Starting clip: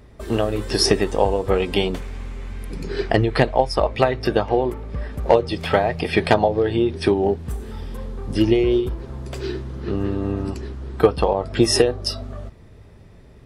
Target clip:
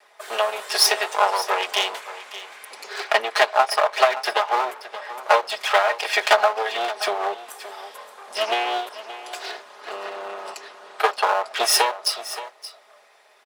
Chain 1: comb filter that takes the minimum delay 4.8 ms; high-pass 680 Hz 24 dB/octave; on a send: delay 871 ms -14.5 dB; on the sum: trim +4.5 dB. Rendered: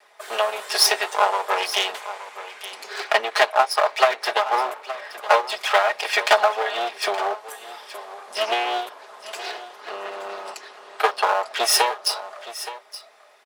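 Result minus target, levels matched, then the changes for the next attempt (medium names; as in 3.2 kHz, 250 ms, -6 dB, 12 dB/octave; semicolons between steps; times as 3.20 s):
echo 297 ms late
change: delay 574 ms -14.5 dB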